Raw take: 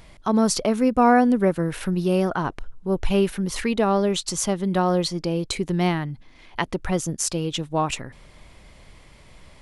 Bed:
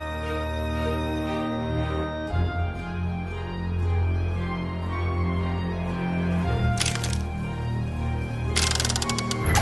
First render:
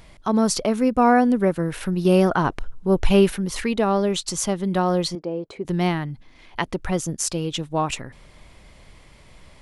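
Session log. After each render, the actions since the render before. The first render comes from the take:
0:02.05–0:03.36: clip gain +4.5 dB
0:05.15–0:05.65: resonant band-pass 550 Hz, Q 0.95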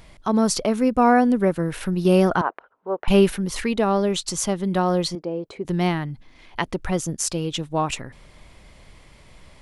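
0:02.41–0:03.08: flat-topped band-pass 950 Hz, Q 0.72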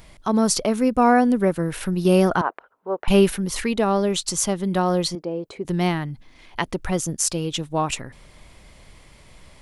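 high-shelf EQ 7,200 Hz +6 dB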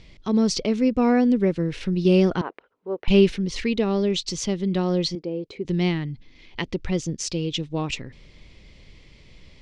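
low-pass filter 5,600 Hz 24 dB per octave
flat-topped bell 1,000 Hz −10 dB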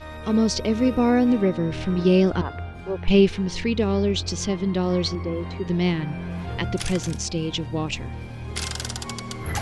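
mix in bed −6.5 dB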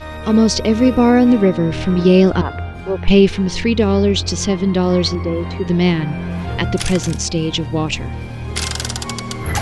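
level +7.5 dB
brickwall limiter −1 dBFS, peak gain reduction 3 dB

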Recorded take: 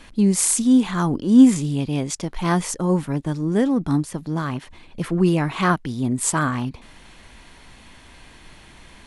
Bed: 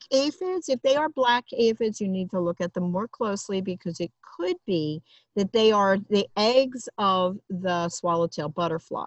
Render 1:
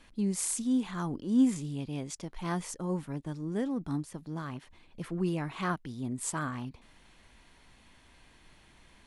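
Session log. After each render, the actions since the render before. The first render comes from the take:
level −13 dB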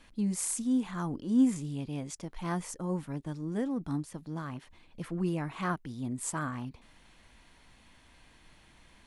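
notch filter 390 Hz, Q 12
dynamic equaliser 3,800 Hz, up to −4 dB, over −53 dBFS, Q 1.1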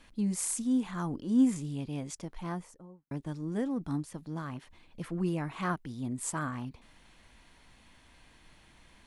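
0:02.17–0:03.11: fade out and dull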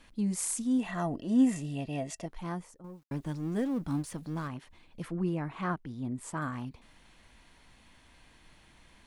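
0:00.79–0:02.26: hollow resonant body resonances 660/1,900/2,700 Hz, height 17 dB
0:02.84–0:04.48: mu-law and A-law mismatch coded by mu
0:05.12–0:06.42: high-shelf EQ 4,000 Hz −11.5 dB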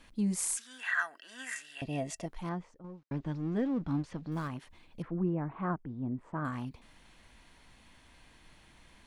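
0:00.57–0:01.82: high-pass with resonance 1,600 Hz, resonance Q 9.8
0:02.49–0:04.32: high-frequency loss of the air 160 metres
0:05.02–0:06.45: low-pass filter 1,300 Hz

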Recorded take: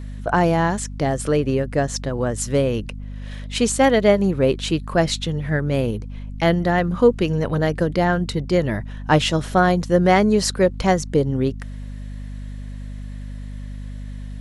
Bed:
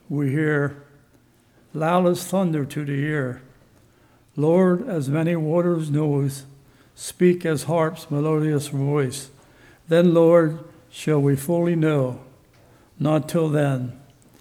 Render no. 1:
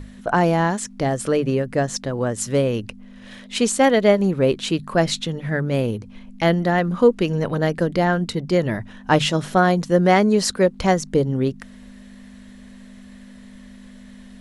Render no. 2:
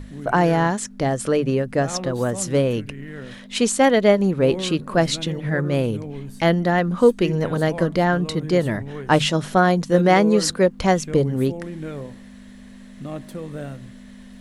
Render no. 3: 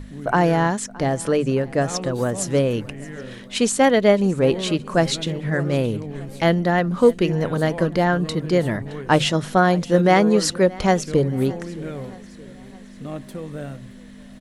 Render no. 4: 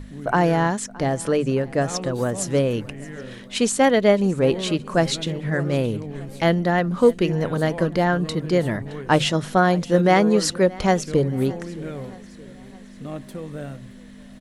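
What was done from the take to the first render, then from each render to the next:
mains-hum notches 50/100/150 Hz
mix in bed −12.5 dB
repeating echo 619 ms, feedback 54%, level −21.5 dB
level −1 dB

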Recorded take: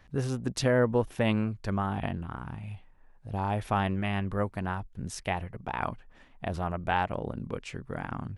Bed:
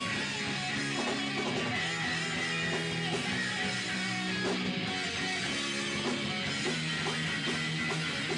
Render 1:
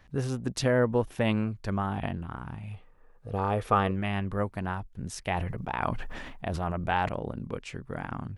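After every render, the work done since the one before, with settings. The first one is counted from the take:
0:02.73–0:03.91: hollow resonant body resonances 470/1,200 Hz, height 13 dB, ringing for 35 ms
0:05.21–0:07.09: level that may fall only so fast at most 30 dB per second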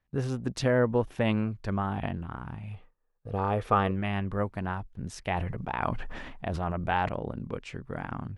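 noise gate with hold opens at −40 dBFS
high-shelf EQ 7,300 Hz −10 dB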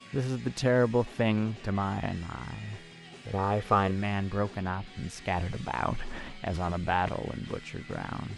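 mix in bed −16 dB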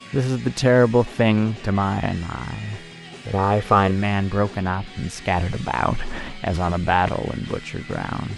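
level +9 dB
brickwall limiter −3 dBFS, peak gain reduction 2 dB

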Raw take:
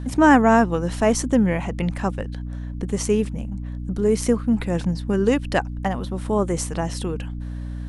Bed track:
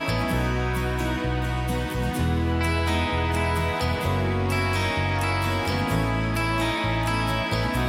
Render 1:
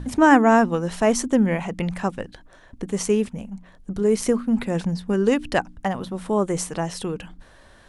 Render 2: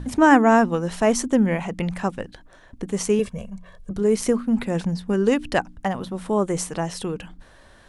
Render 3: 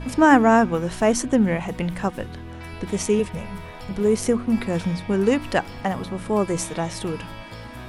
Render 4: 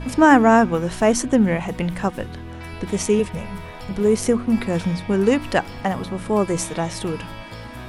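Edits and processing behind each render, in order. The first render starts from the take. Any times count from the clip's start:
hum removal 60 Hz, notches 5
0:03.19–0:03.91: comb filter 1.8 ms, depth 86%
mix in bed track −13.5 dB
level +2 dB; brickwall limiter −1 dBFS, peak gain reduction 1 dB

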